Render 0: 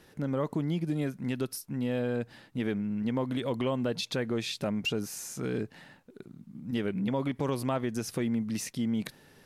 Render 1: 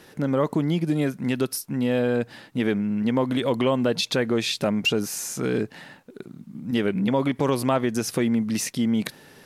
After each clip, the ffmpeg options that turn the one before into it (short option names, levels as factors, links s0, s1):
-af "lowshelf=f=92:g=-11,volume=2.82"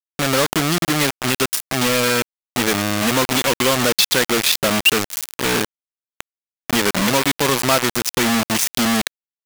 -af "acrusher=bits=3:mix=0:aa=0.000001,tiltshelf=f=920:g=-4.5,volume=1.78"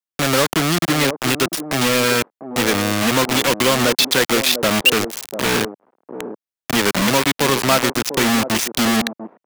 -filter_complex "[0:a]acrossover=split=190|870|5400[s0][s1][s2][s3];[s1]aecho=1:1:696:0.447[s4];[s3]alimiter=limit=0.224:level=0:latency=1:release=178[s5];[s0][s4][s2][s5]amix=inputs=4:normalize=0,volume=1.12"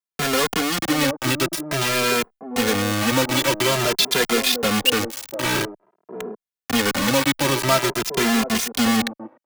-filter_complex "[0:a]asplit=2[s0][s1];[s1]adelay=2.5,afreqshift=0.49[s2];[s0][s2]amix=inputs=2:normalize=1"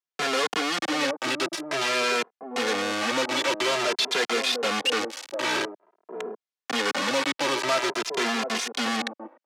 -af "asoftclip=type=tanh:threshold=0.133,highpass=360,lowpass=6100"